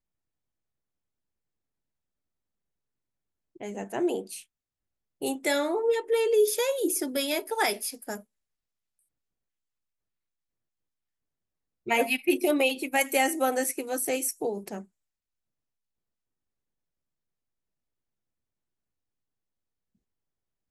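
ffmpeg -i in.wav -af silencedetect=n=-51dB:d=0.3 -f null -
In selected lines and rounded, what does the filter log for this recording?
silence_start: 0.00
silence_end: 3.56 | silence_duration: 3.56
silence_start: 4.44
silence_end: 5.21 | silence_duration: 0.78
silence_start: 8.23
silence_end: 11.86 | silence_duration: 3.63
silence_start: 14.85
silence_end: 20.70 | silence_duration: 5.85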